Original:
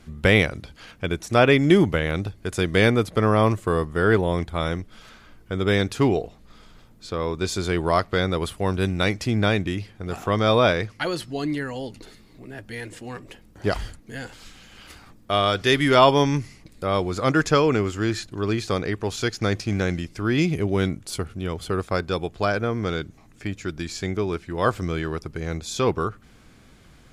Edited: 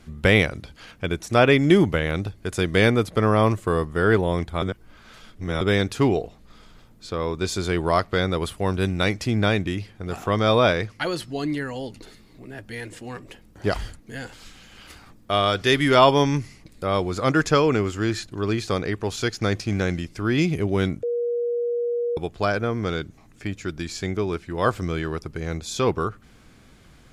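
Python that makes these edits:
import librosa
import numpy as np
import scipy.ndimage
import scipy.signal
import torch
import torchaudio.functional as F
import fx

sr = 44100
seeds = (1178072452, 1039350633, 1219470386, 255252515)

y = fx.edit(x, sr, fx.reverse_span(start_s=4.62, length_s=0.99),
    fx.bleep(start_s=21.03, length_s=1.14, hz=477.0, db=-21.5), tone=tone)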